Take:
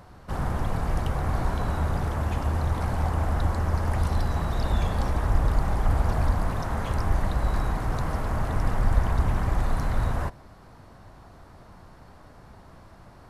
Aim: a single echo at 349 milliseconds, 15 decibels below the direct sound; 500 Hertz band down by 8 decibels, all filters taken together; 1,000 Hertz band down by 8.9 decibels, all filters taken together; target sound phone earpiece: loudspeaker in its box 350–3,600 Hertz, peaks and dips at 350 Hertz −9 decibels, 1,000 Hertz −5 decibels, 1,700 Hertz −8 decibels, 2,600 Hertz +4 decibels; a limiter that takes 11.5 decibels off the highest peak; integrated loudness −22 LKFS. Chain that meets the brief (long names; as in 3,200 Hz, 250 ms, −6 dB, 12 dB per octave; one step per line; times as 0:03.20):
parametric band 500 Hz −5 dB
parametric band 1,000 Hz −6.5 dB
brickwall limiter −19.5 dBFS
loudspeaker in its box 350–3,600 Hz, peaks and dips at 350 Hz −9 dB, 1,000 Hz −5 dB, 1,700 Hz −8 dB, 2,600 Hz +4 dB
single-tap delay 349 ms −15 dB
level +21 dB